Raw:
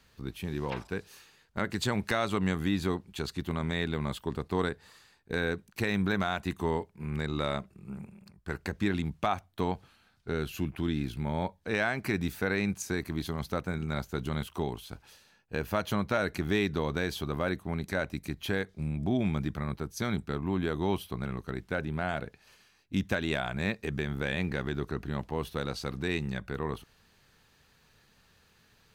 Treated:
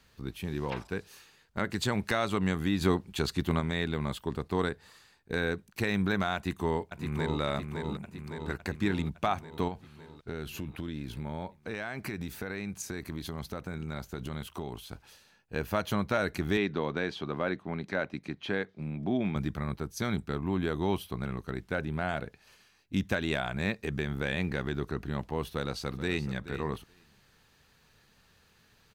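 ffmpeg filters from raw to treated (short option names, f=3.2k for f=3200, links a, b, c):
-filter_complex "[0:a]asplit=2[a][b];[b]afade=t=in:st=6.35:d=0.01,afade=t=out:st=7.4:d=0.01,aecho=0:1:560|1120|1680|2240|2800|3360|3920|4480|5040|5600:0.530884|0.345075|0.224299|0.145794|0.0947662|0.061598|0.0400387|0.0260252|0.0169164|0.0109956[c];[a][c]amix=inputs=2:normalize=0,asettb=1/sr,asplit=3[d][e][f];[d]atrim=end=9.684[g];[e]atrim=start=9.68:end=15.56,asetpts=PTS-STARTPTS,afade=t=in:d=0.004:c=qsin,afade=t=out:st=5.876:d=0.004:c=qsin,acompressor=threshold=-32dB:ratio=6:attack=3.2:release=140:knee=1:detection=peak[h];[f]atrim=start=15.556[i];[g][h]acrossfade=d=0.004:c1=hsin:c2=qsin[j];[j][i]acrossfade=d=0.004:c1=qsin:c2=hsin,asettb=1/sr,asplit=3[k][l][m];[k]atrim=end=16.574[n];[l]atrim=start=16.57:end=19.36,asetpts=PTS-STARTPTS,afade=t=in:d=0.004:c=qsin,afade=t=out:st=2.786:d=0.004:c=qsin,highpass=160,lowpass=3.8k[o];[m]atrim=start=19.356[p];[n][o]acrossfade=d=0.004:c1=hsin:c2=qsin[q];[q][p]acrossfade=d=0.004:c1=qsin:c2=hsin,asplit=2[r][s];[s]afade=t=in:st=25.5:d=0.01,afade=t=out:st=26.33:d=0.01,aecho=0:1:430|860:0.211349|0.0211349[t];[r][t]amix=inputs=2:normalize=0,asplit=3[u][v][w];[u]atrim=end=2.812[x];[v]atrim=start=2.808:end=3.602,asetpts=PTS-STARTPTS,volume=4.5dB[y];[w]atrim=start=3.598[z];[x][y]acrossfade=d=0.004:c1=hsin:c2=hsin[aa];[aa][z]acrossfade=d=0.004:c1=hsin:c2=hsin"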